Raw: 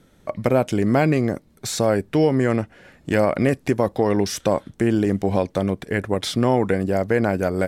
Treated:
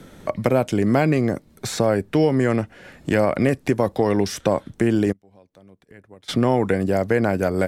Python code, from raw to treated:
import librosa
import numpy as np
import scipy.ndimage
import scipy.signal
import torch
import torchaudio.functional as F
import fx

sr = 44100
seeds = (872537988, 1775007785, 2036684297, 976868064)

y = fx.gate_flip(x, sr, shuts_db=-23.0, range_db=-35, at=(5.11, 6.28), fade=0.02)
y = fx.band_squash(y, sr, depth_pct=40)